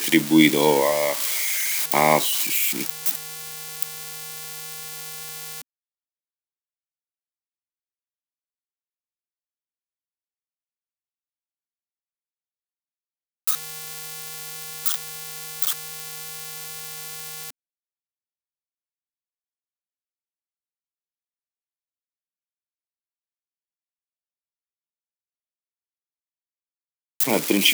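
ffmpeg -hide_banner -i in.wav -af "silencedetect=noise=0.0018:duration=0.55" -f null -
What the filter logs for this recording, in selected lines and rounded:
silence_start: 5.62
silence_end: 13.47 | silence_duration: 7.86
silence_start: 17.50
silence_end: 27.20 | silence_duration: 9.70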